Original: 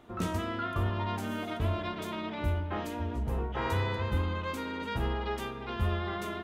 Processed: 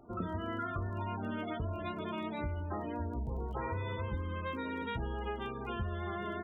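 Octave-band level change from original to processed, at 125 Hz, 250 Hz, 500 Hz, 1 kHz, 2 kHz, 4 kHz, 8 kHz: -6.0 dB, -3.5 dB, -4.0 dB, -4.0 dB, -5.0 dB, -8.5 dB, under -25 dB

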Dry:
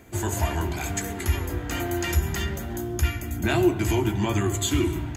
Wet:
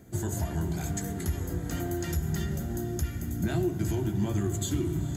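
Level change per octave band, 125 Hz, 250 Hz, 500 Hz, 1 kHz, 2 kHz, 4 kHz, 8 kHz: -3.0 dB, -4.0 dB, -7.0 dB, -10.5 dB, -12.0 dB, -11.0 dB, -6.0 dB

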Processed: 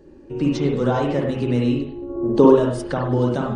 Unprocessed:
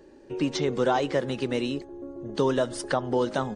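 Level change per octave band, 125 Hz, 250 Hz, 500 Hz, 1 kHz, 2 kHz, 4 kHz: +12.0 dB, +10.0 dB, +7.0 dB, +3.5 dB, 0.0 dB, -1.5 dB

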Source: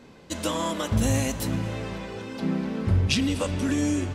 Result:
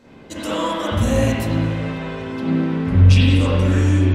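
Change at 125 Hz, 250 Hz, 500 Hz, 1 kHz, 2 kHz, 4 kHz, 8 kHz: +11.5 dB, +6.5 dB, +7.5 dB, +6.5 dB, +6.5 dB, +4.0 dB, -2.5 dB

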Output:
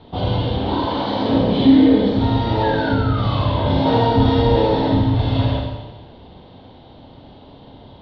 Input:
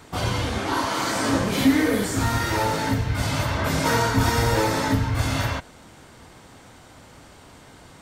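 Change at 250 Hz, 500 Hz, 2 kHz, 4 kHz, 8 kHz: +8.0 dB, +7.5 dB, -4.5 dB, +2.0 dB, under -30 dB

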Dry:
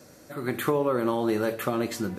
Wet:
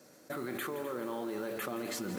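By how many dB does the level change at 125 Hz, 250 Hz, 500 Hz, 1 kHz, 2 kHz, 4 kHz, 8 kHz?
-14.0 dB, -11.0 dB, -11.5 dB, -10.5 dB, -7.0 dB, -5.5 dB, -3.5 dB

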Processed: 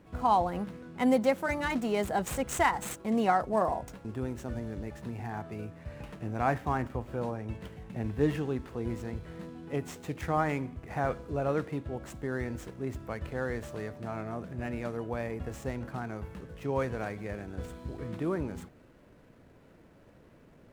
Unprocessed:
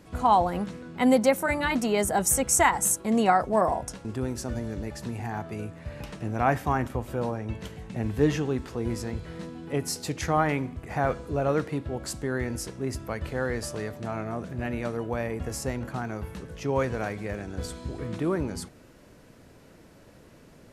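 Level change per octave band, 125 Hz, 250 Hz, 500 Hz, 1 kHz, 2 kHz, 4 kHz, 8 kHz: -4.5 dB, -4.5 dB, -4.5 dB, -4.5 dB, -5.0 dB, -8.0 dB, -15.5 dB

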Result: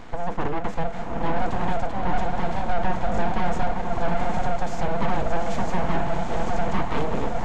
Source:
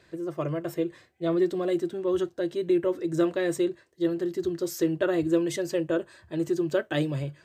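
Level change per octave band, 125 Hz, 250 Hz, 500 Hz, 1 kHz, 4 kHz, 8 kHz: +5.0 dB, -3.5 dB, -2.0 dB, +16.5 dB, +1.0 dB, -3.5 dB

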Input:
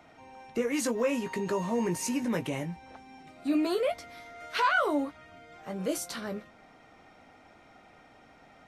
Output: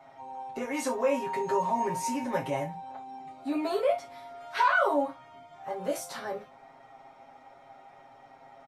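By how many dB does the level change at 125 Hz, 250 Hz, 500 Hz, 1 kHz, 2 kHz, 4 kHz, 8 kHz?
-4.5 dB, -4.0 dB, +1.5 dB, +5.0 dB, +1.0 dB, -3.5 dB, -3.5 dB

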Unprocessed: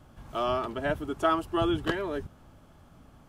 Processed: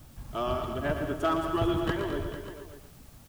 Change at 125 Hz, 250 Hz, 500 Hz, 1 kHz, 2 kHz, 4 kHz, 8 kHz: +3.5 dB, +0.5 dB, -0.5 dB, -2.0 dB, -1.5 dB, -2.0 dB, +2.5 dB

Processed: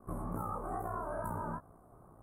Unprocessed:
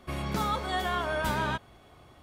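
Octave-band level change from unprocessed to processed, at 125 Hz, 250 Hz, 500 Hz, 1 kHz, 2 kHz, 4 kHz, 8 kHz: -7.0 dB, -7.0 dB, -7.5 dB, -8.5 dB, -19.5 dB, under -40 dB, -14.0 dB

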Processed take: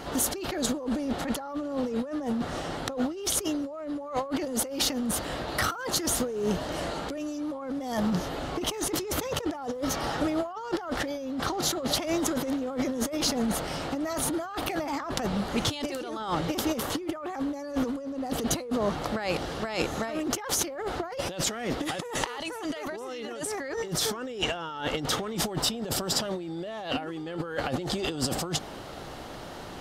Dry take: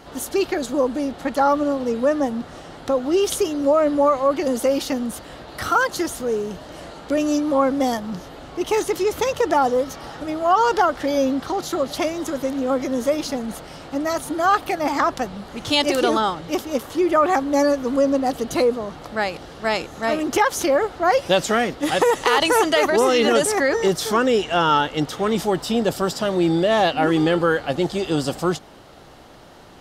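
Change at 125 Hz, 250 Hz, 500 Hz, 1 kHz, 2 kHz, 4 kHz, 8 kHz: -4.0 dB, -7.5 dB, -12.5 dB, -13.0 dB, -10.5 dB, -4.5 dB, 0.0 dB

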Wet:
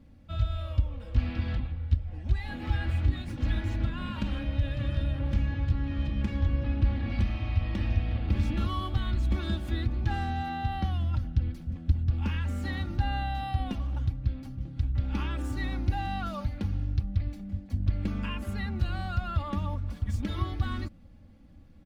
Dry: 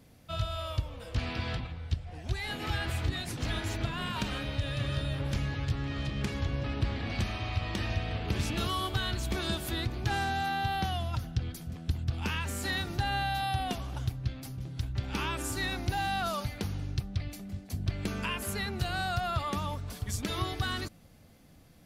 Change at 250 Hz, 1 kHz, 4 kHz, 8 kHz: +2.5 dB, -3.5 dB, -8.0 dB, under -10 dB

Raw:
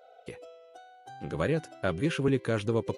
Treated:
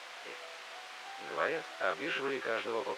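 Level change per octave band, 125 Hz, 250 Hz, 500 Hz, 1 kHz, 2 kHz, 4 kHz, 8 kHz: -27.0 dB, -14.5 dB, -5.5 dB, +2.0 dB, +2.5 dB, +1.0 dB, -2.5 dB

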